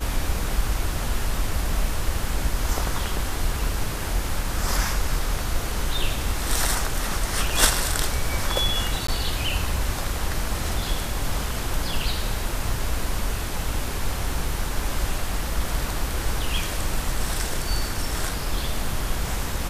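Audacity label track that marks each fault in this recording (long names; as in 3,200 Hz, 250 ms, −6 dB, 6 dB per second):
9.070000	9.080000	drop-out 14 ms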